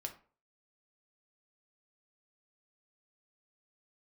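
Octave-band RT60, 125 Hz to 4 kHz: 0.40, 0.40, 0.40, 0.40, 0.35, 0.25 s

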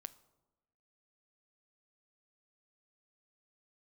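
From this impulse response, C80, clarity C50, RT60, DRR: 20.5 dB, 18.0 dB, 1.1 s, 15.0 dB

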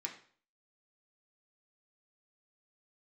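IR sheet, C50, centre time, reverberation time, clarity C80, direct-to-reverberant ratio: 9.5 dB, 16 ms, 0.50 s, 13.5 dB, -0.5 dB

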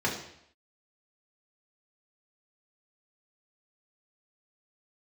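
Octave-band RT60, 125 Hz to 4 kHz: 0.70, 0.70, 0.70, 0.70, 0.75, 0.70 s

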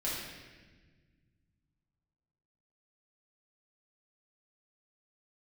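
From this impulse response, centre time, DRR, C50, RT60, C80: 89 ms, -8.0 dB, -0.5 dB, 1.4 s, 2.0 dB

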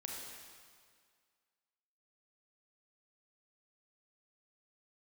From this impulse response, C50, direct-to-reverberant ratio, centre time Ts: 0.0 dB, -2.0 dB, 0.1 s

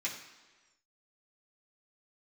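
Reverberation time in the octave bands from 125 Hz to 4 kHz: 1.1, 1.2, 1.3, 1.3, 1.3, 1.3 s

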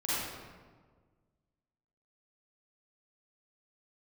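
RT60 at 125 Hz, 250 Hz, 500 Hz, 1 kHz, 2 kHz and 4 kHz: 2.0, 1.8, 1.7, 1.4, 1.1, 0.90 s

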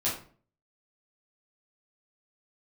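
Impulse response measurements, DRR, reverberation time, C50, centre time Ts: -8.5 dB, 0.45 s, 5.5 dB, 34 ms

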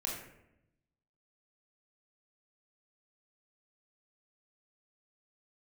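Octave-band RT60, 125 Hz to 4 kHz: 1.3, 1.1, 0.90, 0.75, 0.75, 0.50 s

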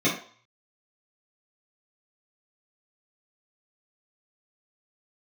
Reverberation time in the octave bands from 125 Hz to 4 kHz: 0.50, 0.35, 0.45, 0.55, 0.45, 0.50 s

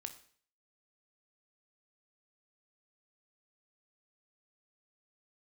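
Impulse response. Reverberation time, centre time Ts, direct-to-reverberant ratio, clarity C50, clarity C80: 0.50 s, 8 ms, 8.0 dB, 13.0 dB, 16.0 dB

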